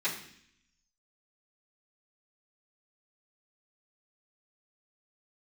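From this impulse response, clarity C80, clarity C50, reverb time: 10.5 dB, 8.0 dB, 0.65 s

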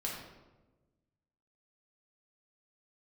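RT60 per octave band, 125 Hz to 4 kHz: 1.8 s, 1.6 s, 1.3 s, 1.0 s, 0.80 s, 0.70 s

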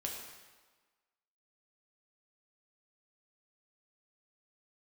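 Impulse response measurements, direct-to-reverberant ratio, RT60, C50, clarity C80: -1.5 dB, 1.4 s, 2.5 dB, 4.5 dB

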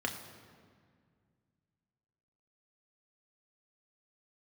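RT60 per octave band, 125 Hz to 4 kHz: 3.0 s, 2.7 s, 2.1 s, 1.9 s, 1.7 s, 1.3 s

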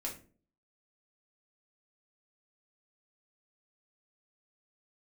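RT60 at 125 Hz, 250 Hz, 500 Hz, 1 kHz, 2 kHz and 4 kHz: 0.55 s, 0.60 s, 0.50 s, 0.35 s, 0.30 s, 0.25 s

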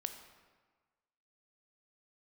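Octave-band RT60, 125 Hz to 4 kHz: 1.4 s, 1.4 s, 1.4 s, 1.5 s, 1.3 s, 1.0 s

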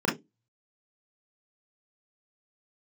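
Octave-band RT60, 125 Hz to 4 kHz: 0.25 s, 0.25 s, 0.20 s, 0.15 s, 0.15 s, 0.15 s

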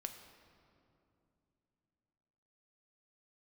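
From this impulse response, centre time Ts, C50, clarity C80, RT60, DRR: 30 ms, 8.0 dB, 9.0 dB, 2.8 s, 5.5 dB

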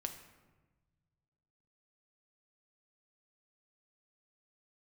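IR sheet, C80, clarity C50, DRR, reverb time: 11.0 dB, 9.5 dB, 5.5 dB, 1.2 s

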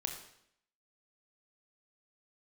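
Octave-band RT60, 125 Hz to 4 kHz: 0.70 s, 0.75 s, 0.70 s, 0.70 s, 0.70 s, 0.70 s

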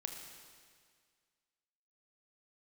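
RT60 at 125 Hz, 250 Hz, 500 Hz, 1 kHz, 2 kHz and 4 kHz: 1.9 s, 1.9 s, 1.9 s, 1.9 s, 1.9 s, 1.8 s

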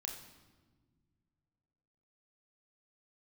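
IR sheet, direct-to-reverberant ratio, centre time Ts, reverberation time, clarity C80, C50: 1.0 dB, 31 ms, 1.5 s, 8.5 dB, 6.5 dB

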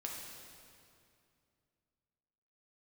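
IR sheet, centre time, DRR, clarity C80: 96 ms, -2.0 dB, 2.5 dB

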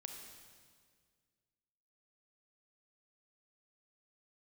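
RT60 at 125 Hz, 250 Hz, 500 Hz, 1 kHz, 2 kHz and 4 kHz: 2.3 s, 2.2 s, 2.0 s, 1.7 s, 1.7 s, 1.7 s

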